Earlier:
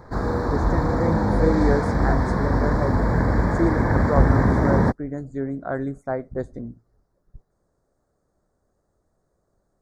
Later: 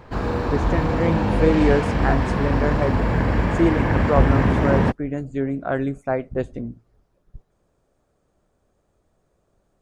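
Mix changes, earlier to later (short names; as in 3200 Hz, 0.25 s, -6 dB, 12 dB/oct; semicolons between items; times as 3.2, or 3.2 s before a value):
speech +3.5 dB; master: remove Butterworth band-stop 2800 Hz, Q 1.3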